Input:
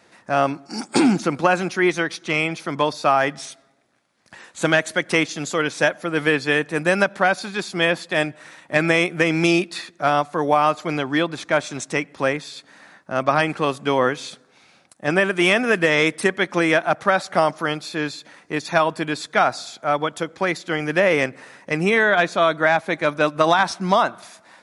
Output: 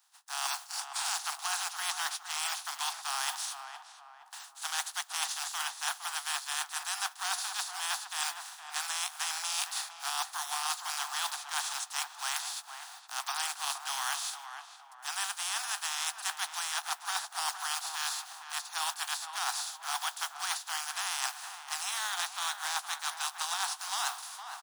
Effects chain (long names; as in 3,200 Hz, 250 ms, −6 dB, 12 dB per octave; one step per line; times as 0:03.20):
compressing power law on the bin magnitudes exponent 0.3
Butterworth high-pass 730 Hz 96 dB per octave
noise gate −50 dBFS, range −13 dB
parametric band 2,200 Hz −10 dB 0.57 octaves
reversed playback
downward compressor 10 to 1, threshold −31 dBFS, peak gain reduction 17 dB
reversed playback
double-tracking delay 14 ms −14 dB
on a send: tape delay 464 ms, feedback 49%, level −6 dB, low-pass 1,400 Hz